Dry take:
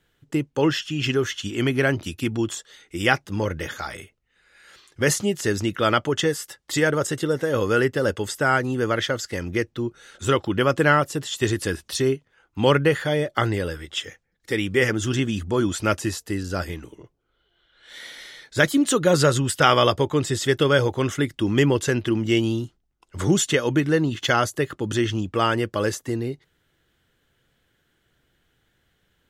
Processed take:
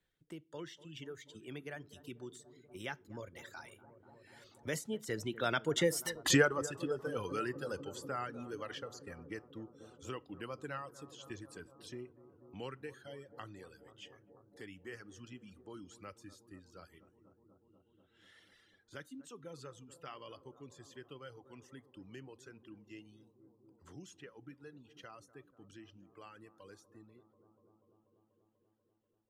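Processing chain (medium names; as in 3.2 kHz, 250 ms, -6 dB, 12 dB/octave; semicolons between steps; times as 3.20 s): Doppler pass-by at 6.15 s, 23 m/s, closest 1.2 m; reverb removal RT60 1.7 s; bucket-brigade echo 243 ms, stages 2048, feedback 78%, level -18 dB; on a send at -21 dB: reverberation RT60 0.30 s, pre-delay 3 ms; on the sum: three bands compressed up and down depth 40%; trim +14.5 dB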